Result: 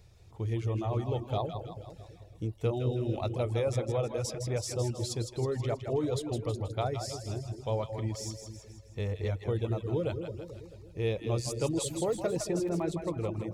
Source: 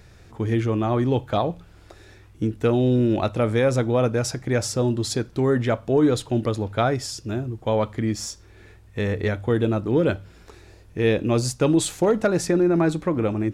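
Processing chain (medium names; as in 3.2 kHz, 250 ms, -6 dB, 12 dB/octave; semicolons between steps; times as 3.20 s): fifteen-band graphic EQ 100 Hz +4 dB, 250 Hz -10 dB, 1.6 kHz -12 dB; two-band feedback delay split 530 Hz, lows 220 ms, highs 160 ms, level -6 dB; reverb removal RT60 0.58 s; 12.11–12.83 s: crackle 49 per s -32 dBFS; trim -8.5 dB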